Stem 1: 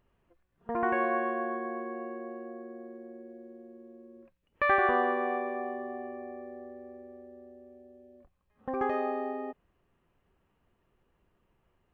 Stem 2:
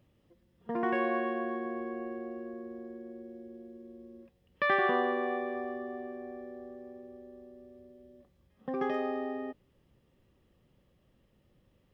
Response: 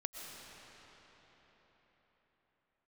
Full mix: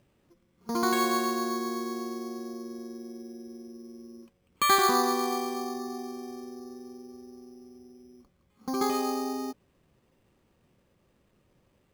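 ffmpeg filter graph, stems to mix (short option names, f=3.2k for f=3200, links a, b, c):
-filter_complex "[0:a]volume=0dB[a];[1:a]volume=1.5dB[b];[a][b]amix=inputs=2:normalize=0,lowshelf=f=76:g=-8,acrusher=samples=8:mix=1:aa=0.000001"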